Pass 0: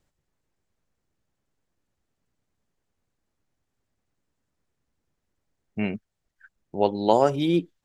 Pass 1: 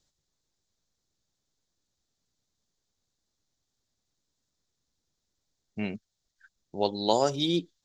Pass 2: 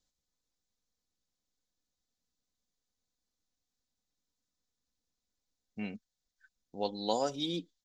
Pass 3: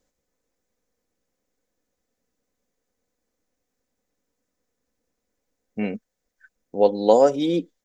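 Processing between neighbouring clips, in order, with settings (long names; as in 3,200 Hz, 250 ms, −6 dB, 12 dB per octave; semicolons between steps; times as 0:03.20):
flat-topped bell 5,000 Hz +14 dB 1.3 octaves; level −5.5 dB
comb filter 4 ms, depth 48%; level −8 dB
octave-band graphic EQ 250/500/2,000/4,000 Hz +4/+11/+6/−9 dB; level +7.5 dB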